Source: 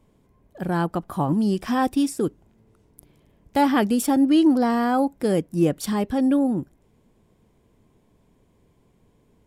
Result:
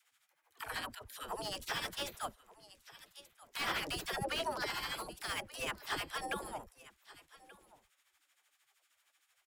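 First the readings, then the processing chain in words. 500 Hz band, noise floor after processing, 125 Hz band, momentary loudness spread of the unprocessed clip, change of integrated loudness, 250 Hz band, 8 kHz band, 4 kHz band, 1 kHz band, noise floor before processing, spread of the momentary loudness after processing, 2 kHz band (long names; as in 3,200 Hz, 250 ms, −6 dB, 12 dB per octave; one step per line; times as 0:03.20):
−18.5 dB, −79 dBFS, −22.5 dB, 9 LU, −17.5 dB, −31.5 dB, −9.5 dB, −2.0 dB, −15.0 dB, −62 dBFS, 21 LU, −5.5 dB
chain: gate on every frequency bin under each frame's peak −25 dB weak
amplitude tremolo 13 Hz, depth 67%
all-pass dispersion lows, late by 65 ms, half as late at 410 Hz
on a send: single-tap delay 1,181 ms −20 dB
on the sum: slew-rate limiting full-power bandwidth 27 Hz
level +6 dB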